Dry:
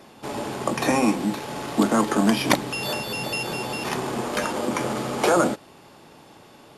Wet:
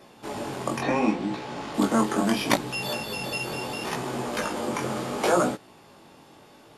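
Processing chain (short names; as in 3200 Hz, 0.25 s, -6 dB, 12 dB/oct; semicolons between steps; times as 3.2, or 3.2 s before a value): 0.8–1.73 LPF 3200 Hz -> 6800 Hz 12 dB/oct; chorus 0.72 Hz, delay 16 ms, depth 6.6 ms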